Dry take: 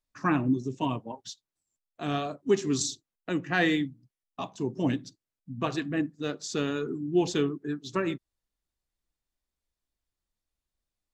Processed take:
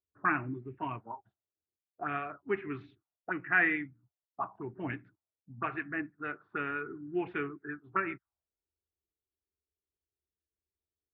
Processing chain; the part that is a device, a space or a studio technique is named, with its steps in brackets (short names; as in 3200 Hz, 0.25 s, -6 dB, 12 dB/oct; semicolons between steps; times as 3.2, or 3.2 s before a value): envelope filter bass rig (envelope low-pass 430–2300 Hz up, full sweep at -27.5 dBFS; speaker cabinet 76–2200 Hz, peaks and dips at 79 Hz +9 dB, 160 Hz -9 dB, 250 Hz -9 dB, 520 Hz -10 dB, 1400 Hz +9 dB); gain -6.5 dB